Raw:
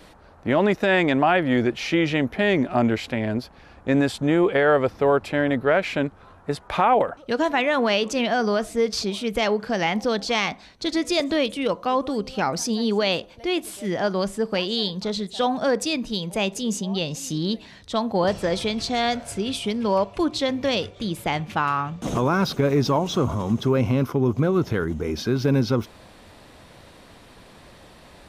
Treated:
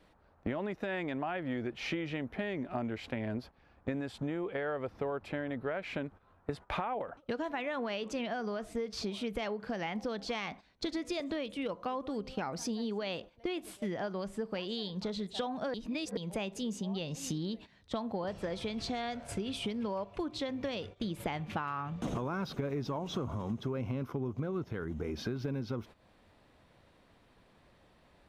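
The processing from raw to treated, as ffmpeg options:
ffmpeg -i in.wav -filter_complex "[0:a]asplit=5[link_01][link_02][link_03][link_04][link_05];[link_01]atrim=end=15.742[link_06];[link_02]atrim=start=15.738:end=16.172,asetpts=PTS-STARTPTS,areverse[link_07];[link_03]atrim=start=16.168:end=21.202[link_08];[link_04]atrim=start=21.198:end=24.642,asetpts=PTS-STARTPTS,volume=4.5dB[link_09];[link_05]atrim=start=24.638[link_10];[link_06][link_07]acrossfade=duration=0.004:curve1=hsin:curve2=hsin[link_11];[link_11][link_08]acrossfade=duration=0.004:curve1=hsin:curve2=hsin[link_12];[link_12][link_09]acrossfade=duration=0.004:curve1=hsin:curve2=hsin[link_13];[link_13][link_10]acrossfade=duration=0.004:curve1=hsin:curve2=hsin,agate=range=-16dB:threshold=-35dB:ratio=16:detection=peak,bass=frequency=250:gain=1,treble=frequency=4000:gain=-7,acompressor=threshold=-33dB:ratio=10" out.wav

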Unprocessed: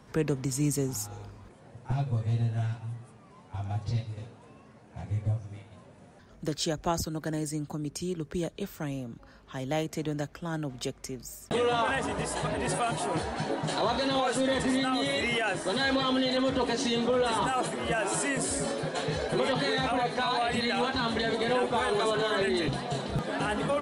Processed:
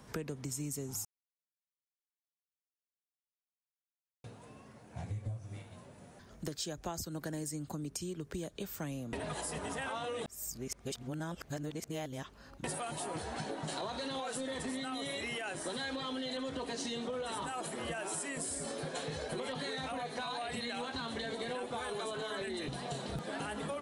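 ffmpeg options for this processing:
ffmpeg -i in.wav -filter_complex "[0:a]asplit=5[link_01][link_02][link_03][link_04][link_05];[link_01]atrim=end=1.05,asetpts=PTS-STARTPTS,afade=type=out:start_time=1.046:duration=0.004:curve=hsin[link_06];[link_02]atrim=start=1.05:end=4.24,asetpts=PTS-STARTPTS,volume=0[link_07];[link_03]atrim=start=4.24:end=9.132,asetpts=PTS-STARTPTS,afade=type=in:duration=0.004:curve=hsin[link_08];[link_04]atrim=start=9.128:end=12.642,asetpts=PTS-STARTPTS,areverse[link_09];[link_05]atrim=start=12.638[link_10];[link_06][link_07][link_08]concat=n=3:v=0:a=1[link_11];[link_11][link_09]acrossfade=duration=0.004:curve1=hsin:curve2=hsin[link_12];[link_12][link_10]acrossfade=duration=0.004:curve1=hsin:curve2=hsin,highshelf=frequency=6400:gain=9,acompressor=threshold=-35dB:ratio=6,volume=-1.5dB" out.wav

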